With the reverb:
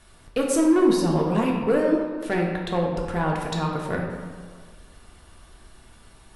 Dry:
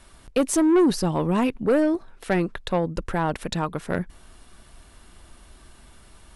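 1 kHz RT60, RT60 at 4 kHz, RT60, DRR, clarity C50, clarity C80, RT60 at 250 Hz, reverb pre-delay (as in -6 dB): 1.7 s, 1.0 s, 1.7 s, -1.5 dB, 2.0 dB, 4.0 dB, 1.7 s, 3 ms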